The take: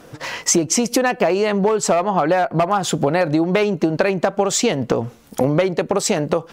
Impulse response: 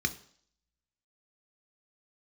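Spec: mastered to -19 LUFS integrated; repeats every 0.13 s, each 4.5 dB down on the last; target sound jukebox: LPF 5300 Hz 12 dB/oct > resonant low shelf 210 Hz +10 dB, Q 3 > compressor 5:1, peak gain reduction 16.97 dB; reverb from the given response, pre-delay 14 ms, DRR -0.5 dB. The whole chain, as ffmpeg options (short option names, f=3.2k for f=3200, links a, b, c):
-filter_complex "[0:a]aecho=1:1:130|260|390|520|650|780|910|1040|1170:0.596|0.357|0.214|0.129|0.0772|0.0463|0.0278|0.0167|0.01,asplit=2[a][b];[1:a]atrim=start_sample=2205,adelay=14[c];[b][c]afir=irnorm=-1:irlink=0,volume=-6dB[d];[a][d]amix=inputs=2:normalize=0,lowpass=5.3k,lowshelf=f=210:t=q:w=3:g=10,acompressor=threshold=-12dB:ratio=5,volume=-4dB"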